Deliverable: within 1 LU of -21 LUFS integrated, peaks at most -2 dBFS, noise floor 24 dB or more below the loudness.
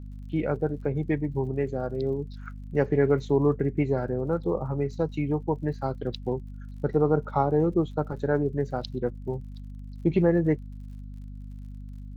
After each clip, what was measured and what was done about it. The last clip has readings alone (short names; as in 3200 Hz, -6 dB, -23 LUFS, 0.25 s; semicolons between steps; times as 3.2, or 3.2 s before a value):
ticks 50/s; hum 50 Hz; harmonics up to 250 Hz; hum level -37 dBFS; loudness -27.5 LUFS; peak -10.0 dBFS; loudness target -21.0 LUFS
-> de-click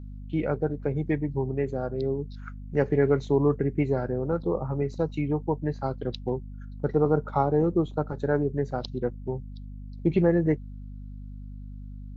ticks 0.082/s; hum 50 Hz; harmonics up to 250 Hz; hum level -37 dBFS
-> notches 50/100/150/200/250 Hz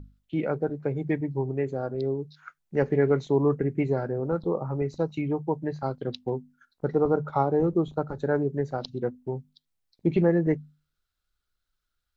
hum none; loudness -27.5 LUFS; peak -10.0 dBFS; loudness target -21.0 LUFS
-> gain +6.5 dB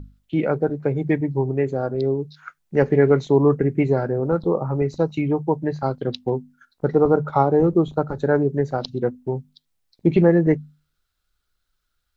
loudness -21.0 LUFS; peak -3.5 dBFS; noise floor -75 dBFS